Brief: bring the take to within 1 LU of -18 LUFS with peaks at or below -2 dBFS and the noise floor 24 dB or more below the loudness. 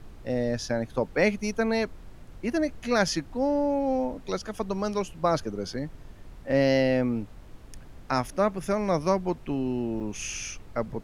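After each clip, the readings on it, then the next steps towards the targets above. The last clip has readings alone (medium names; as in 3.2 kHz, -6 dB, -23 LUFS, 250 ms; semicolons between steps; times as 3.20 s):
dropouts 1; longest dropout 4.7 ms; noise floor -47 dBFS; noise floor target -52 dBFS; loudness -28.0 LUFS; peak level -9.0 dBFS; loudness target -18.0 LUFS
-> interpolate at 10.00 s, 4.7 ms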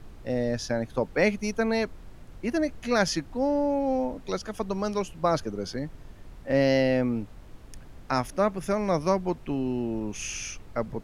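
dropouts 0; noise floor -47 dBFS; noise floor target -52 dBFS
-> noise print and reduce 6 dB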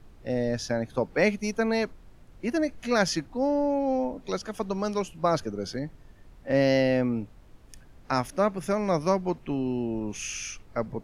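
noise floor -52 dBFS; loudness -28.0 LUFS; peak level -9.0 dBFS; loudness target -18.0 LUFS
-> trim +10 dB; peak limiter -2 dBFS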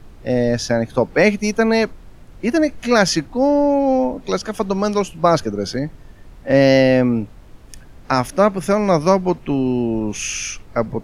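loudness -18.0 LUFS; peak level -2.0 dBFS; noise floor -42 dBFS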